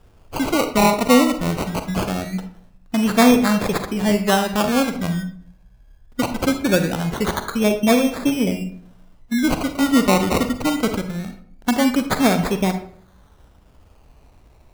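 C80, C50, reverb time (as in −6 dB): 13.5 dB, 9.5 dB, 0.60 s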